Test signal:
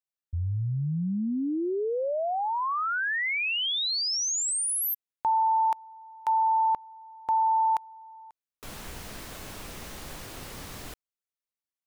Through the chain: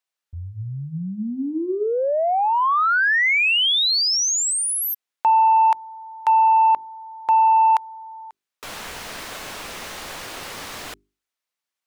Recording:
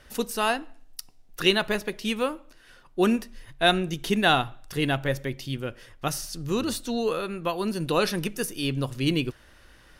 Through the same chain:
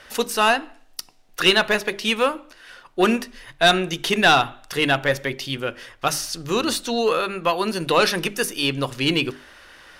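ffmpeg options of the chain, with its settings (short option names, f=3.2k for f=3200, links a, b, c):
-filter_complex "[0:a]asplit=2[a][b];[b]highpass=f=720:p=1,volume=15dB,asoftclip=type=tanh:threshold=-6dB[c];[a][c]amix=inputs=2:normalize=0,lowpass=f=5k:p=1,volume=-6dB,bandreject=f=50:t=h:w=6,bandreject=f=100:t=h:w=6,bandreject=f=150:t=h:w=6,bandreject=f=200:t=h:w=6,bandreject=f=250:t=h:w=6,bandreject=f=300:t=h:w=6,bandreject=f=350:t=h:w=6,bandreject=f=400:t=h:w=6,volume=1.5dB"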